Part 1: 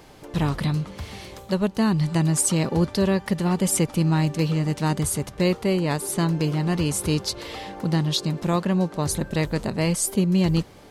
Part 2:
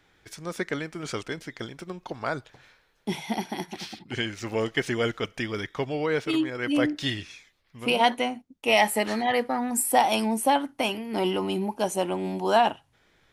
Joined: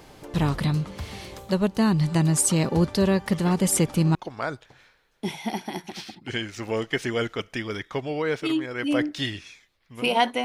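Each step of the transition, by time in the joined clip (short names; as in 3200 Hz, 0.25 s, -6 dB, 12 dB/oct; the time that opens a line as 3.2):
part 1
3.32 add part 2 from 1.16 s 0.83 s -7 dB
4.15 switch to part 2 from 1.99 s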